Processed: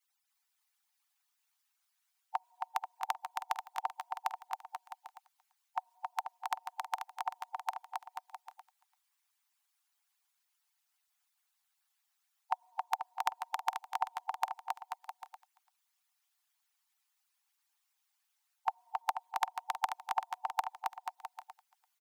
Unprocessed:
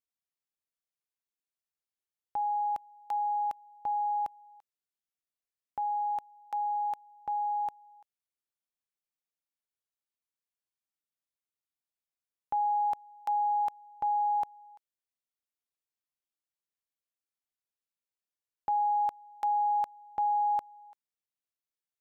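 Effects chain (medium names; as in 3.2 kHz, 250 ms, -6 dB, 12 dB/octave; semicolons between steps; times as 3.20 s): harmonic-percussive separation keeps percussive; steep high-pass 720 Hz 96 dB/octave; saturation -28 dBFS, distortion -25 dB; on a send: bouncing-ball echo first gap 270 ms, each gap 0.8×, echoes 5; on the sum: trim +15.5 dB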